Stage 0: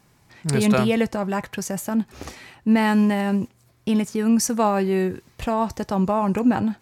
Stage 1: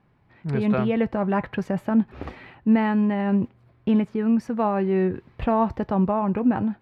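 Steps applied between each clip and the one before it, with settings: gain riding within 4 dB 0.5 s; distance through air 460 m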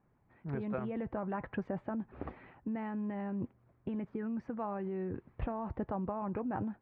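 peak limiter -18.5 dBFS, peak gain reduction 8.5 dB; harmonic-percussive split harmonic -7 dB; low-pass 1.7 kHz 12 dB/octave; trim -5.5 dB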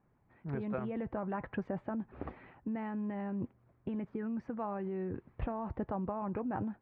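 no audible change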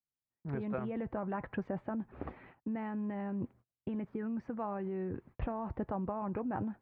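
gate -56 dBFS, range -34 dB

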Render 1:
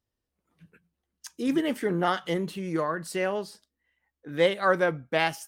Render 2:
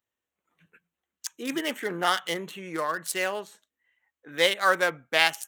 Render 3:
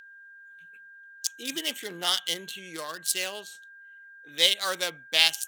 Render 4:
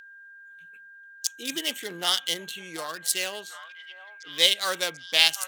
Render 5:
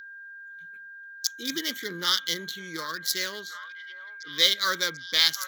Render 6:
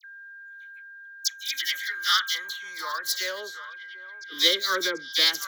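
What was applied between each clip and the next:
local Wiener filter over 9 samples; tilt EQ +4.5 dB/octave; trim +1.5 dB
whistle 1.6 kHz -37 dBFS; resonant high shelf 2.4 kHz +12 dB, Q 1.5; trim -7.5 dB
repeats whose band climbs or falls 740 ms, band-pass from 980 Hz, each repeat 0.7 oct, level -10.5 dB; trim +1.5 dB
in parallel at -3.5 dB: saturation -14.5 dBFS, distortion -8 dB; on the sum: static phaser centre 2.7 kHz, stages 6
phase dispersion lows, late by 57 ms, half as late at 2.3 kHz; high-pass sweep 2.2 kHz -> 340 Hz, 1.52–4.00 s

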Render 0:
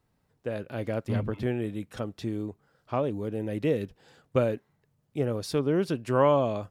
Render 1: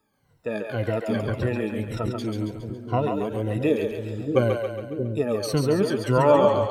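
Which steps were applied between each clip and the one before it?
drifting ripple filter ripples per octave 2, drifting -1.9 Hz, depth 22 dB; two-band feedback delay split 400 Hz, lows 633 ms, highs 138 ms, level -4 dB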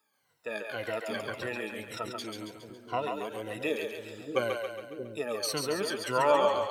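high-pass 1.5 kHz 6 dB/octave; trim +1.5 dB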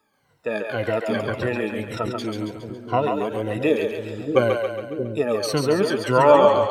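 tilt EQ -2.5 dB/octave; trim +9 dB

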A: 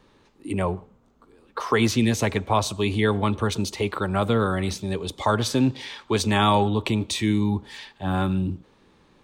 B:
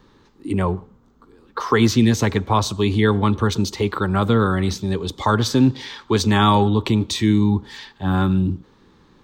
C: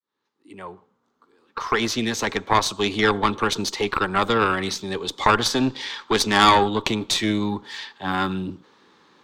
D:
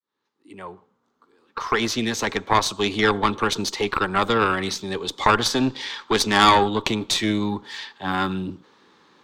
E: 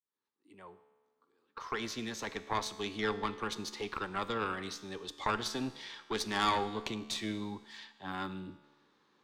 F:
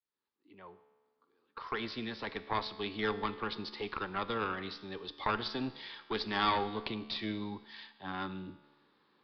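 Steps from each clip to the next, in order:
fifteen-band graphic EQ 630 Hz -8 dB, 2.5 kHz -7 dB, 10 kHz -11 dB; trim +6 dB
fade-in on the opening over 2.96 s; frequency weighting A; Chebyshev shaper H 4 -14 dB, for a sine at -4.5 dBFS; trim +2 dB
no audible change
feedback comb 72 Hz, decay 1.4 s, harmonics all, mix 60%; trim -8 dB
resampled via 11.025 kHz

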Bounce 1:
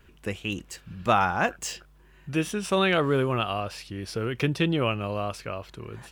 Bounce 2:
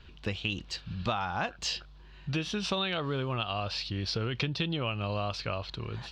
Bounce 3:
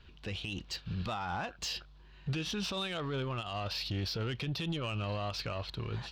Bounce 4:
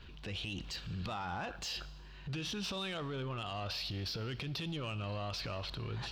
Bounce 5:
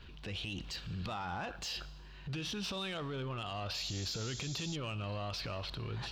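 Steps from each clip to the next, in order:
FFT filter 100 Hz 0 dB, 390 Hz -7 dB, 840 Hz -2 dB, 2 kHz -5 dB, 4.2 kHz +8 dB, 10 kHz -24 dB; compression 12:1, threshold -32 dBFS, peak gain reduction 13.5 dB; trim +4.5 dB
peak limiter -27.5 dBFS, peak gain reduction 10 dB; saturation -31 dBFS, distortion -17 dB; upward expansion 1.5:1, over -51 dBFS; trim +4 dB
compression 5:1, threshold -42 dBFS, peak gain reduction 10.5 dB; transient shaper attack -5 dB, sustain +6 dB; reverberation RT60 1.3 s, pre-delay 46 ms, DRR 17 dB; trim +4.5 dB
painted sound noise, 3.74–4.76 s, 3.2–7.5 kHz -47 dBFS

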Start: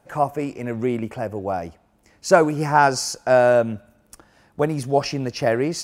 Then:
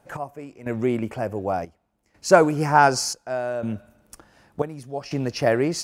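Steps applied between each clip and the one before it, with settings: trance gate "x...xxxxx" 91 bpm -12 dB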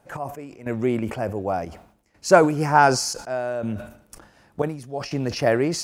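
decay stretcher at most 100 dB/s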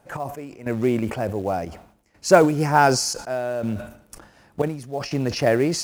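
dynamic bell 1.1 kHz, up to -4 dB, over -31 dBFS, Q 1.1; in parallel at -6.5 dB: short-mantissa float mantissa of 2-bit; on the sum: trim -1.5 dB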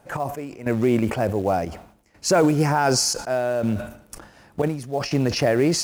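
peak limiter -12.5 dBFS, peak gain reduction 11 dB; trim +3 dB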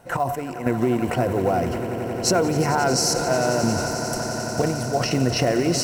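rippled EQ curve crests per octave 2, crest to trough 7 dB; compression, threshold -21 dBFS, peak gain reduction 9 dB; echo with a slow build-up 89 ms, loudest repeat 8, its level -15 dB; trim +3.5 dB

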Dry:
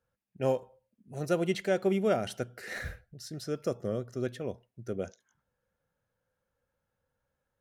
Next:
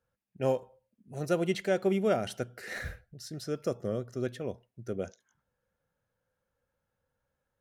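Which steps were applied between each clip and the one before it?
no audible change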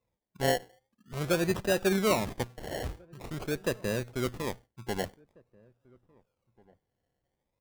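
in parallel at -8.5 dB: Schmitt trigger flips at -38 dBFS; on the sum: decimation with a swept rate 28×, swing 60% 0.46 Hz; echo from a far wall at 290 m, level -27 dB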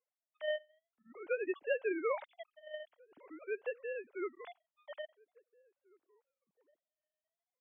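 formants replaced by sine waves; trim -9 dB

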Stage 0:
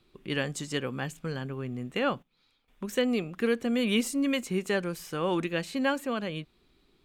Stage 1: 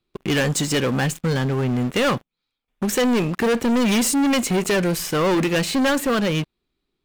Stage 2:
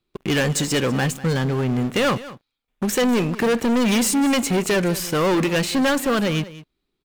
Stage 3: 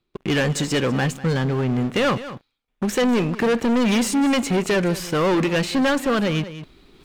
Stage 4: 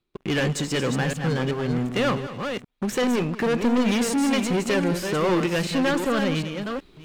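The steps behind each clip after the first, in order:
waveshaping leveller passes 5; trim -1.5 dB
delay 197 ms -17 dB
treble shelf 8.3 kHz -11.5 dB; reverse; upward compressor, threshold -29 dBFS; reverse
chunks repeated in reverse 378 ms, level -6 dB; trim -3.5 dB

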